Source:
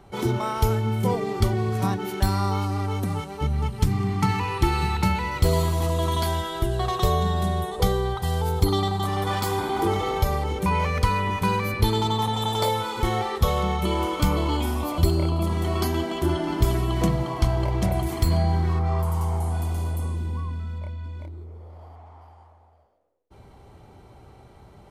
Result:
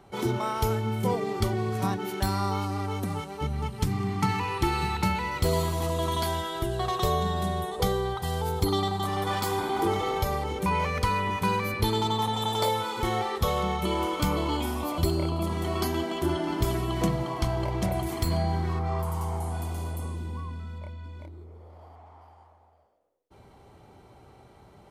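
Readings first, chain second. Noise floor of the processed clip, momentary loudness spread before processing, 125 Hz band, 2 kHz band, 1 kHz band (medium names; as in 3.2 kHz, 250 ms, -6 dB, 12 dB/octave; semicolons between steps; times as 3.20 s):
-55 dBFS, 5 LU, -6.0 dB, -2.0 dB, -2.0 dB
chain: bass shelf 86 Hz -9 dB; trim -2 dB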